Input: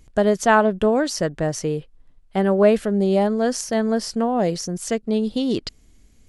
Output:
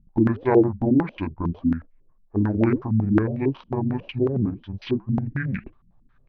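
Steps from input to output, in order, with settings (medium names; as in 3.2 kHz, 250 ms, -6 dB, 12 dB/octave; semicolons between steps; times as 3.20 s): rotating-head pitch shifter -10.5 st; flange 1.7 Hz, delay 0.1 ms, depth 8.1 ms, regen -85%; step-sequenced low-pass 11 Hz 200–2200 Hz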